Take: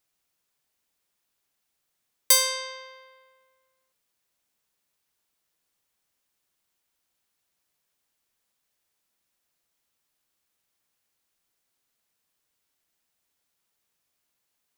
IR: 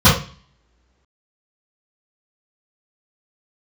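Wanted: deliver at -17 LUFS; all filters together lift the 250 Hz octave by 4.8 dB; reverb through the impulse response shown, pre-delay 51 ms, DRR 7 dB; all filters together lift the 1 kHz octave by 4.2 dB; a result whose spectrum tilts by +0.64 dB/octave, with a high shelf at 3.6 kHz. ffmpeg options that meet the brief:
-filter_complex "[0:a]equalizer=f=250:t=o:g=6,equalizer=f=1000:t=o:g=4.5,highshelf=f=3600:g=-6,asplit=2[s0][s1];[1:a]atrim=start_sample=2205,adelay=51[s2];[s1][s2]afir=irnorm=-1:irlink=0,volume=0.0224[s3];[s0][s3]amix=inputs=2:normalize=0,volume=2.24"

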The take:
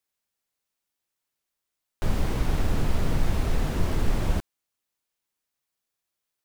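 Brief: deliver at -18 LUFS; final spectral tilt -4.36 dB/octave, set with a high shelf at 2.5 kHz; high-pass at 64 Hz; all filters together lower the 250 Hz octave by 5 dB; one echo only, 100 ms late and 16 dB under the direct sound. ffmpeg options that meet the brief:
-af "highpass=64,equalizer=f=250:t=o:g=-7.5,highshelf=f=2500:g=7,aecho=1:1:100:0.158,volume=4.47"

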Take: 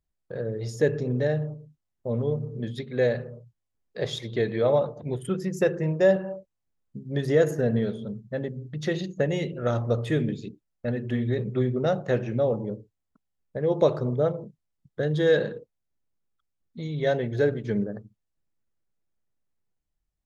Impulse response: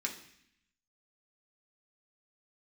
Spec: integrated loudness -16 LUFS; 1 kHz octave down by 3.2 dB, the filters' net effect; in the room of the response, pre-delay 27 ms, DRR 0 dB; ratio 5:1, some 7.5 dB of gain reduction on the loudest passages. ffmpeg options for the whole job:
-filter_complex "[0:a]equalizer=f=1000:t=o:g=-5,acompressor=threshold=0.0631:ratio=5,asplit=2[s0][s1];[1:a]atrim=start_sample=2205,adelay=27[s2];[s1][s2]afir=irnorm=-1:irlink=0,volume=0.75[s3];[s0][s3]amix=inputs=2:normalize=0,volume=4.22"

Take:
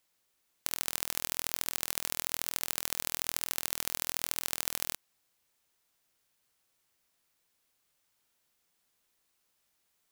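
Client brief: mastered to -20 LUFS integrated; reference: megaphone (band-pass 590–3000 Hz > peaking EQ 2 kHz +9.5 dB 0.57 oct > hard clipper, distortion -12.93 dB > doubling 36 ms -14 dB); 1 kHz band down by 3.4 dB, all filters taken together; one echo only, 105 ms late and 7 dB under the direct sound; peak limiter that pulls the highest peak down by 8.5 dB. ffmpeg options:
-filter_complex "[0:a]equalizer=f=1000:t=o:g=-5,alimiter=limit=0.282:level=0:latency=1,highpass=590,lowpass=3000,equalizer=f=2000:t=o:w=0.57:g=9.5,aecho=1:1:105:0.447,asoftclip=type=hard:threshold=0.0251,asplit=2[s0][s1];[s1]adelay=36,volume=0.2[s2];[s0][s2]amix=inputs=2:normalize=0,volume=21.1"

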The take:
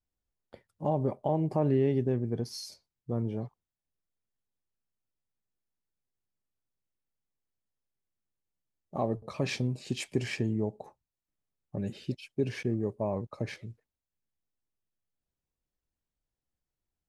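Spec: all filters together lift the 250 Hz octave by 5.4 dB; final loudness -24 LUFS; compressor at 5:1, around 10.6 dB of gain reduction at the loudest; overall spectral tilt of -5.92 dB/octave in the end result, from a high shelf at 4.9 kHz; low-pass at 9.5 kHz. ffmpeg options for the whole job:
-af "lowpass=9500,equalizer=f=250:t=o:g=6.5,highshelf=f=4900:g=8.5,acompressor=threshold=0.0316:ratio=5,volume=4.22"

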